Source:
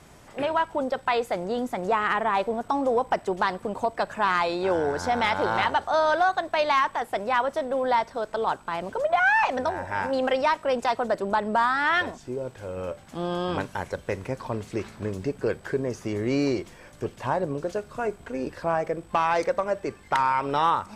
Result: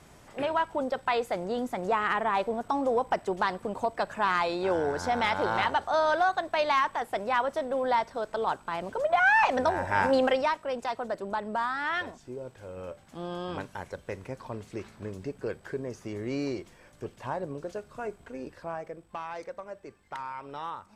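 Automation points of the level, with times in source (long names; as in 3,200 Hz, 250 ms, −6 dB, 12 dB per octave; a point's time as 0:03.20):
0:08.95 −3 dB
0:10.10 +3.5 dB
0:10.63 −7.5 dB
0:18.22 −7.5 dB
0:19.28 −15 dB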